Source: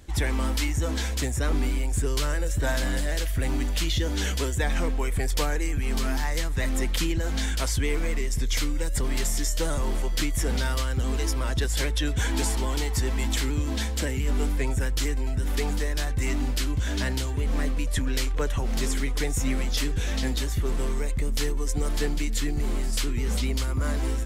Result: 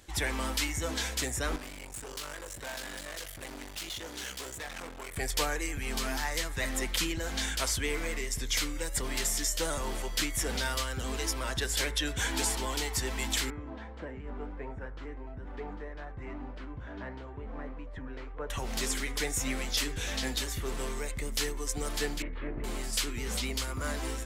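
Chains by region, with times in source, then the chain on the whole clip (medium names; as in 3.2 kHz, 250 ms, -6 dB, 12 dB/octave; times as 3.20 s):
1.56–5.17 s: bass shelf 160 Hz -6 dB + valve stage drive 34 dB, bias 0.75
13.50–18.50 s: Chebyshev low-pass 1.1 kHz + flange 1.6 Hz, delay 3.6 ms, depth 7.7 ms, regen +81%
22.22–22.64 s: comb filter that takes the minimum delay 2.4 ms + Bessel low-pass 1.5 kHz, order 6 + band-stop 770 Hz, Q 8.5
whole clip: bass shelf 340 Hz -11 dB; de-hum 68.75 Hz, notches 33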